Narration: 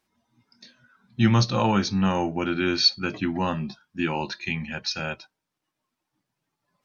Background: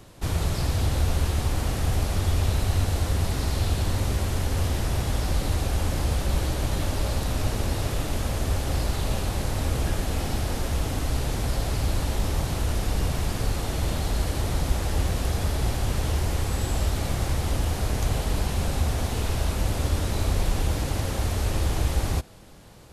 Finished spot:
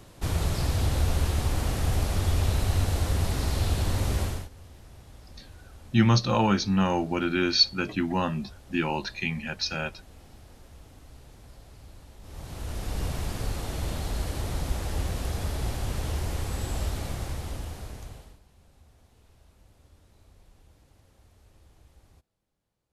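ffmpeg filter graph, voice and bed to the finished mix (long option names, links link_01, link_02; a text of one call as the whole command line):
ffmpeg -i stem1.wav -i stem2.wav -filter_complex "[0:a]adelay=4750,volume=-1dB[link_01];[1:a]volume=17dB,afade=type=out:start_time=4.22:duration=0.27:silence=0.0794328,afade=type=in:start_time=12.21:duration=0.84:silence=0.11885,afade=type=out:start_time=16.86:duration=1.53:silence=0.0398107[link_02];[link_01][link_02]amix=inputs=2:normalize=0" out.wav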